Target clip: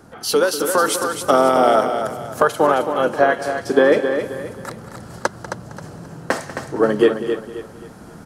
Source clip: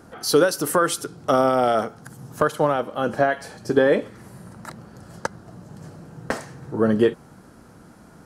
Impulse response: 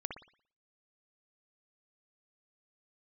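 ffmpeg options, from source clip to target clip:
-filter_complex "[0:a]aecho=1:1:193:0.178,acrossover=split=280[link_01][link_02];[link_01]acompressor=threshold=-42dB:ratio=6[link_03];[link_03][link_02]amix=inputs=2:normalize=0,asplit=2[link_04][link_05];[link_05]asetrate=29433,aresample=44100,atempo=1.49831,volume=-12dB[link_06];[link_04][link_06]amix=inputs=2:normalize=0,aecho=1:1:266|532|798|1064:0.398|0.135|0.046|0.0156,dynaudnorm=framelen=100:gausssize=17:maxgain=6dB,volume=1dB"

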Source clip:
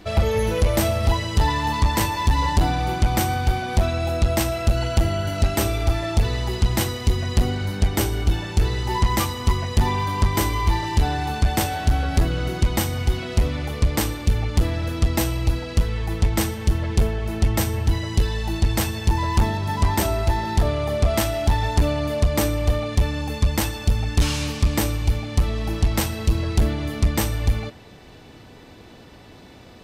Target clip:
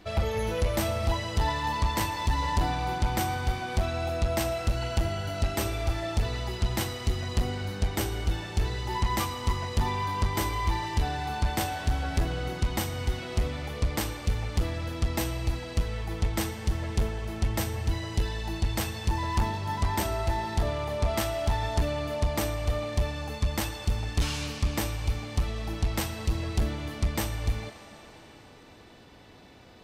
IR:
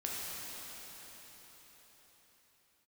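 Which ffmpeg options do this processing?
-filter_complex "[0:a]asplit=2[link_01][link_02];[link_02]highpass=630,lowpass=7400[link_03];[1:a]atrim=start_sample=2205,lowshelf=frequency=440:gain=10.5[link_04];[link_03][link_04]afir=irnorm=-1:irlink=0,volume=-10dB[link_05];[link_01][link_05]amix=inputs=2:normalize=0,volume=-8dB"

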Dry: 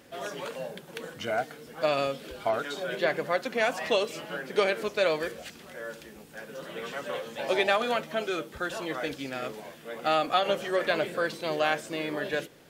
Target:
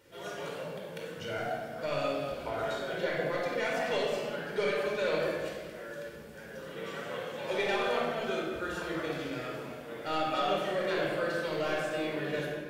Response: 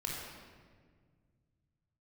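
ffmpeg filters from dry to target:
-filter_complex "[0:a]asoftclip=type=tanh:threshold=-17dB[link_01];[1:a]atrim=start_sample=2205[link_02];[link_01][link_02]afir=irnorm=-1:irlink=0,volume=-5dB"

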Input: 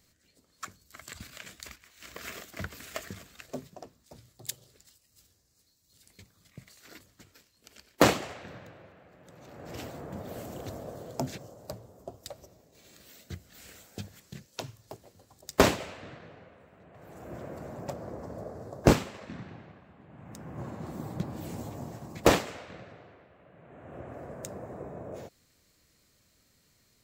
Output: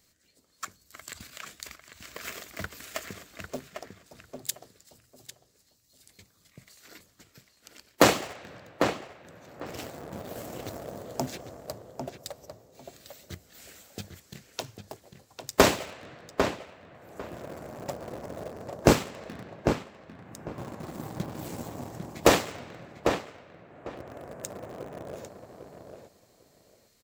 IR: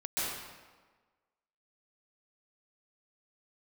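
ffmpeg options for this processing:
-filter_complex "[0:a]bass=frequency=250:gain=-4,treble=frequency=4000:gain=2,asplit=2[link_01][link_02];[link_02]acrusher=bits=5:mix=0:aa=0.000001,volume=-9.5dB[link_03];[link_01][link_03]amix=inputs=2:normalize=0,asplit=2[link_04][link_05];[link_05]adelay=799,lowpass=frequency=2800:poles=1,volume=-6dB,asplit=2[link_06][link_07];[link_07]adelay=799,lowpass=frequency=2800:poles=1,volume=0.18,asplit=2[link_08][link_09];[link_09]adelay=799,lowpass=frequency=2800:poles=1,volume=0.18[link_10];[link_04][link_06][link_08][link_10]amix=inputs=4:normalize=0"

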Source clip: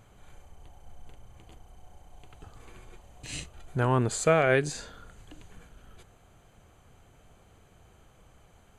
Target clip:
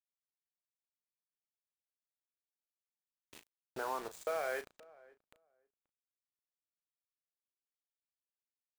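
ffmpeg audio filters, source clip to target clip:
ffmpeg -i in.wav -filter_complex "[0:a]afwtdn=0.0112,highpass=560,acompressor=threshold=-46dB:ratio=2.5,asoftclip=type=hard:threshold=-33dB,bandpass=frequency=710:width_type=q:width=0.57:csg=0,acrusher=bits=8:mix=0:aa=0.000001,asplit=2[link_01][link_02];[link_02]adelay=35,volume=-11dB[link_03];[link_01][link_03]amix=inputs=2:normalize=0,asplit=2[link_04][link_05];[link_05]adelay=532,lowpass=frequency=1200:poles=1,volume=-22dB,asplit=2[link_06][link_07];[link_07]adelay=532,lowpass=frequency=1200:poles=1,volume=0.17[link_08];[link_04][link_06][link_08]amix=inputs=3:normalize=0,volume=6dB" out.wav

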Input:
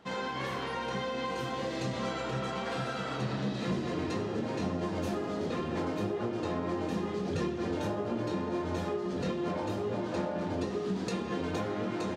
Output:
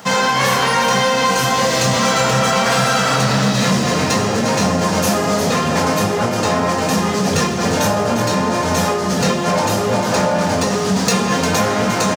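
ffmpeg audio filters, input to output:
ffmpeg -i in.wav -filter_complex "[0:a]apsyclip=29.5dB,highpass=120,asplit=2[link_01][link_02];[link_02]aecho=0:1:352:0.299[link_03];[link_01][link_03]amix=inputs=2:normalize=0,aexciter=amount=1.8:drive=9.8:freq=5100,equalizer=frequency=340:width=2.5:gain=-14,volume=-8dB" out.wav

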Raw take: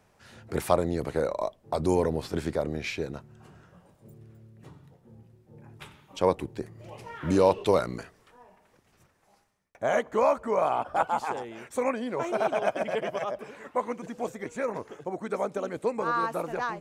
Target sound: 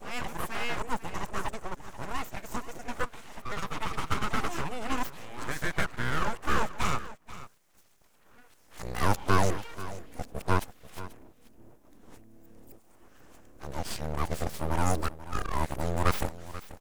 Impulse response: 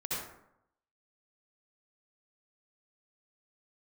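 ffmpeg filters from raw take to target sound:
-af "areverse,aexciter=amount=2.2:drive=6.5:freq=5700,bandreject=frequency=1100:width=7.3,aeval=exprs='abs(val(0))':channel_layout=same,aecho=1:1:486:0.168"

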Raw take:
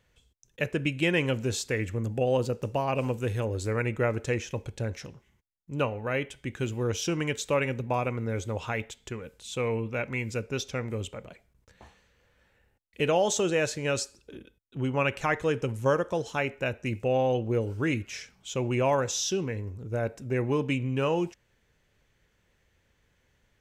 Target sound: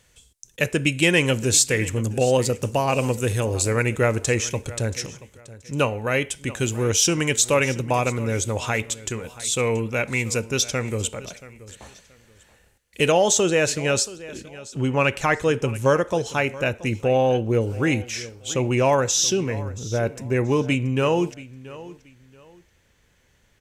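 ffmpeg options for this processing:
ffmpeg -i in.wav -af "asetnsamples=nb_out_samples=441:pad=0,asendcmd='13.12 equalizer g 5.5',equalizer=frequency=9000:width_type=o:width=1.7:gain=14.5,acontrast=58,aecho=1:1:679|1358:0.126|0.0327" out.wav

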